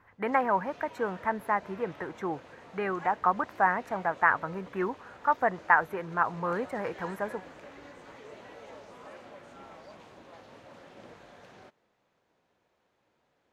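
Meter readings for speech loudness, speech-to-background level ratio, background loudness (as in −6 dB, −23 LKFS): −29.5 LKFS, 20.0 dB, −49.5 LKFS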